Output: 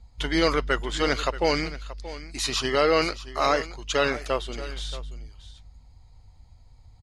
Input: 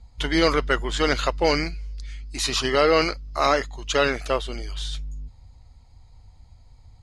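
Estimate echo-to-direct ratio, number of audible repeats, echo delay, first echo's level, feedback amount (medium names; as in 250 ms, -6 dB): -15.5 dB, 1, 629 ms, -15.5 dB, no regular repeats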